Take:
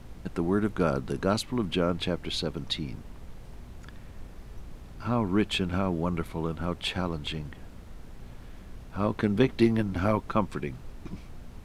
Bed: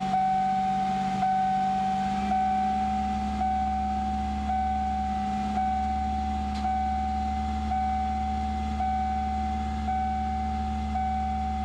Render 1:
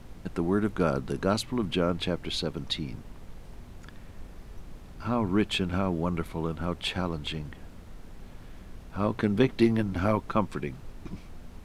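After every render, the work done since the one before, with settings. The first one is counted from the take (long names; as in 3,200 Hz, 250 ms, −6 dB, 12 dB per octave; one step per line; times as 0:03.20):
hum removal 60 Hz, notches 2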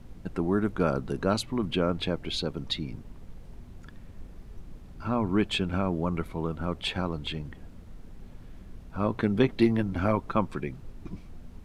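broadband denoise 6 dB, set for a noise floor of −47 dBFS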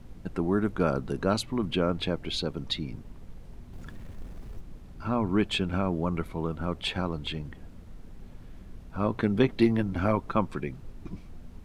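0:03.73–0:04.61: mu-law and A-law mismatch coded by mu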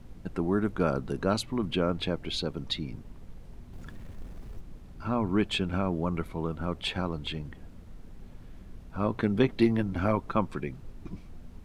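level −1 dB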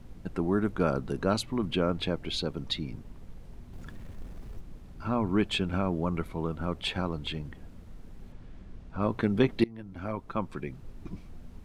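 0:08.32–0:09.02: high-frequency loss of the air 59 metres
0:09.64–0:10.98: fade in linear, from −23.5 dB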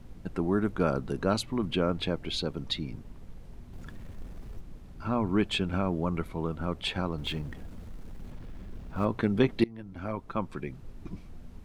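0:07.18–0:09.05: mu-law and A-law mismatch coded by mu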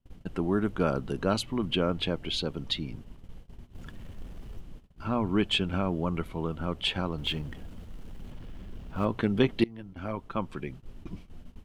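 noise gate −43 dBFS, range −29 dB
parametric band 3,000 Hz +8 dB 0.27 octaves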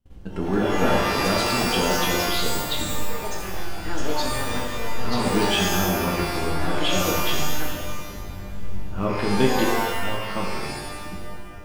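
delay with pitch and tempo change per echo 278 ms, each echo +6 semitones, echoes 3, each echo −6 dB
reverb with rising layers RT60 1.1 s, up +12 semitones, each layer −2 dB, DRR −1.5 dB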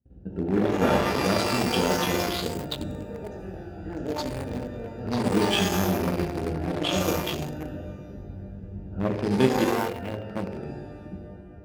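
adaptive Wiener filter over 41 samples
high-pass filter 68 Hz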